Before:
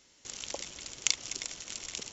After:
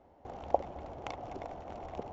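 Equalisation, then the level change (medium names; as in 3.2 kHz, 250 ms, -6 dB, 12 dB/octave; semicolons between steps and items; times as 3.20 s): resonant low-pass 750 Hz, resonance Q 4.9; peaking EQ 77 Hz +10 dB 0.44 oct; +5.5 dB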